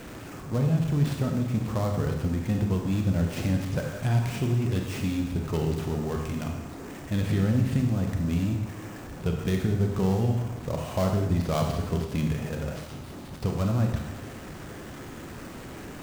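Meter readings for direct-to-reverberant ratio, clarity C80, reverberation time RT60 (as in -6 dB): 2.5 dB, 6.5 dB, 1.0 s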